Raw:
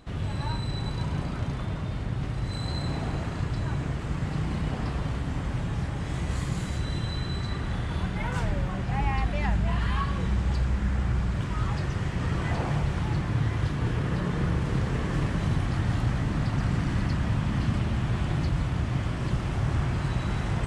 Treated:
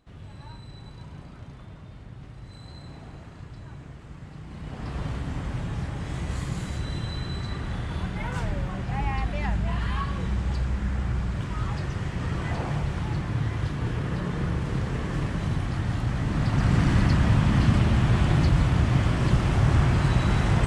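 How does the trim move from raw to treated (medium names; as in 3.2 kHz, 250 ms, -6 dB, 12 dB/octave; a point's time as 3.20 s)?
4.44 s -12.5 dB
5.01 s -1 dB
16.06 s -1 dB
16.82 s +6 dB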